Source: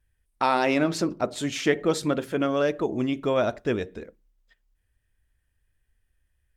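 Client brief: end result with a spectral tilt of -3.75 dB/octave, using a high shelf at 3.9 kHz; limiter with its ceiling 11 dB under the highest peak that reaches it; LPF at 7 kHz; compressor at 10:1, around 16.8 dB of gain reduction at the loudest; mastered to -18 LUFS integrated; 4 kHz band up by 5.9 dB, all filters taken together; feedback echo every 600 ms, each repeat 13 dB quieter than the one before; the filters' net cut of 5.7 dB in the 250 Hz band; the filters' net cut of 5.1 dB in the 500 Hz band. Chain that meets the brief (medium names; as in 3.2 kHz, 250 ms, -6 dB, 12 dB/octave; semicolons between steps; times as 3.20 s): low-pass 7 kHz; peaking EQ 250 Hz -5.5 dB; peaking EQ 500 Hz -5 dB; treble shelf 3.9 kHz +6.5 dB; peaking EQ 4 kHz +4 dB; compression 10:1, threshold -36 dBFS; peak limiter -30.5 dBFS; feedback delay 600 ms, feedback 22%, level -13 dB; trim +23.5 dB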